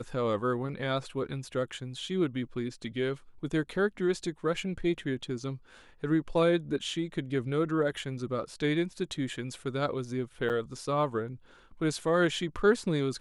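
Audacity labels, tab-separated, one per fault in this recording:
10.490000	10.500000	gap 8.6 ms

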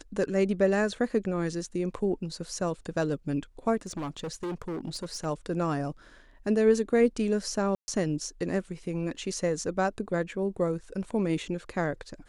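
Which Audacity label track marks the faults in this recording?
3.810000	5.260000	clipped -30.5 dBFS
7.750000	7.880000	gap 0.13 s

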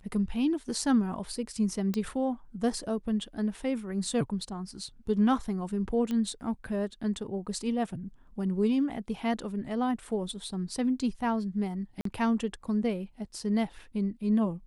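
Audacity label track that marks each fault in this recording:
1.940000	1.940000	pop -18 dBFS
6.110000	6.110000	pop -21 dBFS
12.010000	12.050000	gap 43 ms

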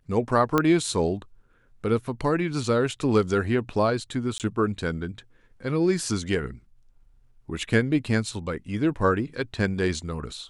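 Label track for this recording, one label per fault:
0.580000	0.580000	pop -8 dBFS
4.380000	4.400000	gap 18 ms

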